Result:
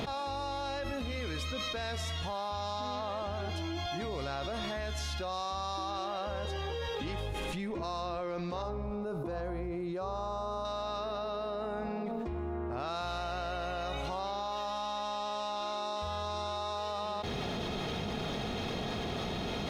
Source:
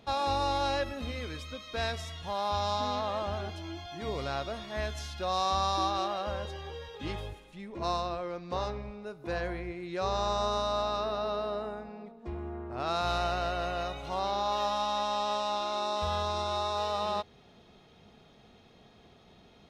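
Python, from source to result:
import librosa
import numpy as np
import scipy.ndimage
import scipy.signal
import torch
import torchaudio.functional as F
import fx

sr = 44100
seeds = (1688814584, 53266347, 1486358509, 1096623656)

y = fx.curve_eq(x, sr, hz=(1200.0, 1800.0, 7000.0, 10000.0), db=(0, -11, -8, -3), at=(8.62, 10.65))
y = fx.env_flatten(y, sr, amount_pct=100)
y = y * 10.0 ** (-8.5 / 20.0)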